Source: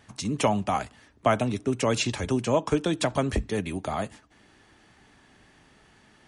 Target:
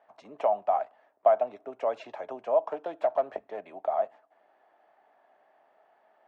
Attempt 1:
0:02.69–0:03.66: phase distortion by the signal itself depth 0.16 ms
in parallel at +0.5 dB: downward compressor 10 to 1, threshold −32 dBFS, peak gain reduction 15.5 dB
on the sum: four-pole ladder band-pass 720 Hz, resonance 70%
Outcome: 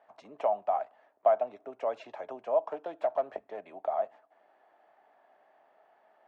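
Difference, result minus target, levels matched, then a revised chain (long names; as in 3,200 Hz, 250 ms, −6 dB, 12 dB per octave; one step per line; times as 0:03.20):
downward compressor: peak gain reduction +10 dB
0:02.69–0:03.66: phase distortion by the signal itself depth 0.16 ms
in parallel at +0.5 dB: downward compressor 10 to 1, threshold −21 dBFS, peak gain reduction 5.5 dB
on the sum: four-pole ladder band-pass 720 Hz, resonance 70%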